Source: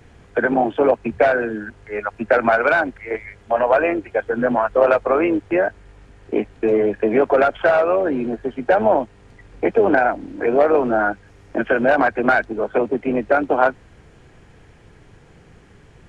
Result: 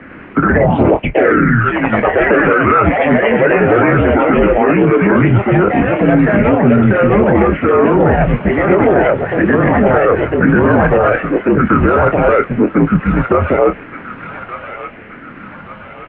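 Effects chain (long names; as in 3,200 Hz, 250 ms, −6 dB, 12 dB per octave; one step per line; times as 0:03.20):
rippled gain that drifts along the octave scale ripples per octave 0.52, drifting −0.79 Hz, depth 7 dB
reversed playback
downward compressor 5 to 1, threshold −24 dBFS, peak gain reduction 15 dB
reversed playback
delay with pitch and tempo change per echo 99 ms, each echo +2 semitones, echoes 3
double-tracking delay 25 ms −10 dB
delay with a high-pass on its return 1,174 ms, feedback 45%, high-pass 2,100 Hz, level −4 dB
single-sideband voice off tune −200 Hz 300–2,900 Hz
boost into a limiter +18 dB
level −1 dB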